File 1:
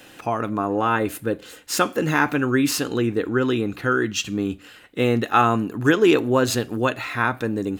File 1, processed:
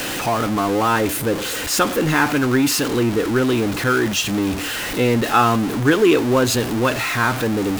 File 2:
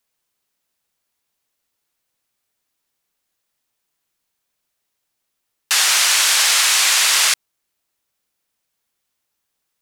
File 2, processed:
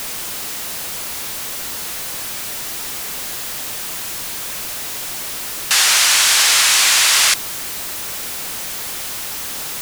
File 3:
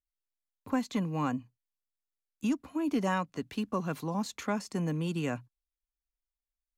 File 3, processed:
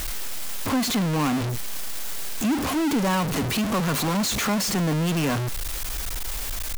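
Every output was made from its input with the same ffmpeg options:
-af "aeval=exprs='val(0)+0.5*0.1*sgn(val(0))':c=same"

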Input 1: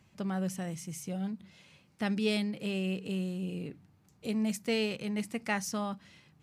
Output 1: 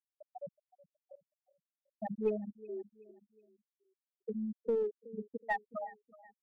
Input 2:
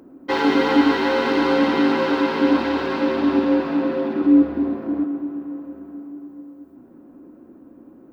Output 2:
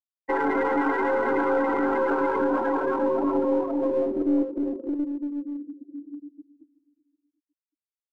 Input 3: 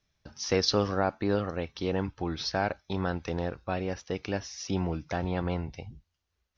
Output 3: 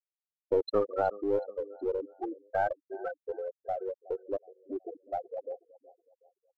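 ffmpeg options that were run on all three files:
-filter_complex "[0:a]aeval=exprs='0.596*(cos(1*acos(clip(val(0)/0.596,-1,1)))-cos(1*PI/2))+0.00422*(cos(4*acos(clip(val(0)/0.596,-1,1)))-cos(4*PI/2))':c=same,acrossover=split=290 2600:gain=0.178 1 0.178[a][b][c];[a][b][c]amix=inputs=3:normalize=0,afftfilt=real='re*gte(hypot(re,im),0.112)':imag='im*gte(hypot(re,im),0.112)':win_size=1024:overlap=0.75,acrossover=split=330[d][e];[d]acompressor=threshold=-35dB:ratio=6[f];[e]alimiter=limit=-20dB:level=0:latency=1:release=25[g];[f][g]amix=inputs=2:normalize=0,aecho=1:1:371|742|1113:0.1|0.041|0.0168,asplit=2[h][i];[i]aeval=exprs='clip(val(0),-1,0.0178)':c=same,volume=-6dB[j];[h][j]amix=inputs=2:normalize=0"

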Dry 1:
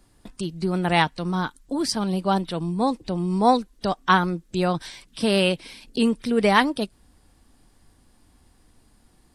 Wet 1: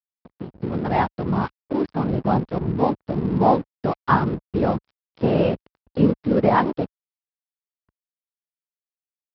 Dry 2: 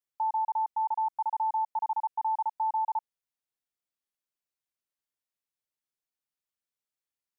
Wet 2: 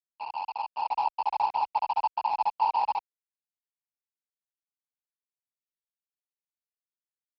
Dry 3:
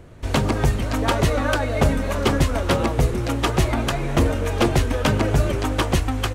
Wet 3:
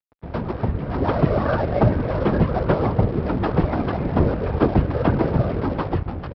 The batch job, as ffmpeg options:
-filter_complex "[0:a]asplit=2[a][b];[b]acompressor=threshold=-36dB:ratio=4,volume=1.5dB[c];[a][c]amix=inputs=2:normalize=0,afftfilt=real='hypot(re,im)*cos(2*PI*random(0))':imag='hypot(re,im)*sin(2*PI*random(1))':win_size=512:overlap=0.75,lowpass=1.2k,dynaudnorm=f=240:g=7:m=8dB,aresample=11025,aeval=exprs='sgn(val(0))*max(abs(val(0))-0.015,0)':c=same,aresample=44100,highpass=42"

